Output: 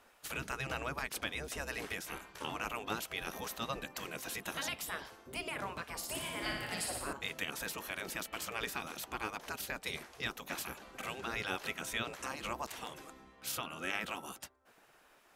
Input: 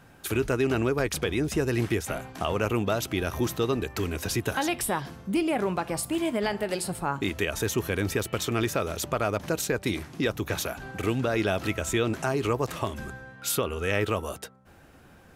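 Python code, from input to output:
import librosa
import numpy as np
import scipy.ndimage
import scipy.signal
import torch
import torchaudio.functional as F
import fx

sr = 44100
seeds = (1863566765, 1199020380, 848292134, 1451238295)

y = fx.room_flutter(x, sr, wall_m=10.0, rt60_s=0.91, at=(5.97, 7.13))
y = fx.spec_gate(y, sr, threshold_db=-10, keep='weak')
y = y * librosa.db_to_amplitude(-5.0)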